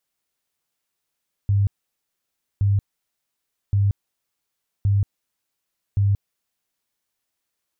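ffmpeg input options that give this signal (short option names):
-f lavfi -i "aevalsrc='0.178*sin(2*PI*100*mod(t,1.12))*lt(mod(t,1.12),18/100)':d=5.6:s=44100"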